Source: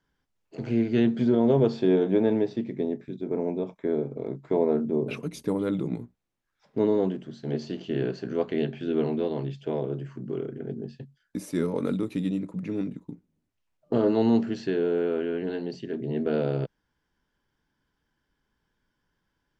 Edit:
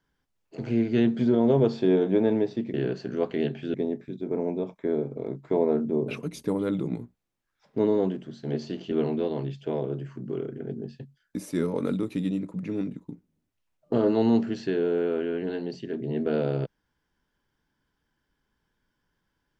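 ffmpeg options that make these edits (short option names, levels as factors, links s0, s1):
-filter_complex "[0:a]asplit=4[s0][s1][s2][s3];[s0]atrim=end=2.742[s4];[s1]atrim=start=7.918:end=8.922[s5];[s2]atrim=start=2.738:end=7.922[s6];[s3]atrim=start=8.918[s7];[s4][s5]acrossfade=d=0.004:c1=hsin:c2=hsin[s8];[s8][s6]acrossfade=d=0.004:c1=hsin:c2=hsin[s9];[s9][s7]acrossfade=d=0.004:c1=hsin:c2=hsin"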